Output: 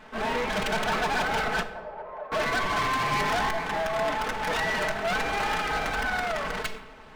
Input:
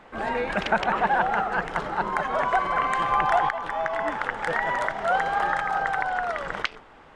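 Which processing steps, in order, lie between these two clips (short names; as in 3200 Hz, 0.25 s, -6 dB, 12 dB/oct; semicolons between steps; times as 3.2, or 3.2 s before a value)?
minimum comb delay 4.6 ms; hard clip -26.5 dBFS, distortion -7 dB; 1.63–2.32 ladder band-pass 640 Hz, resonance 60%; shoebox room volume 600 m³, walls mixed, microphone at 0.46 m; gain +2.5 dB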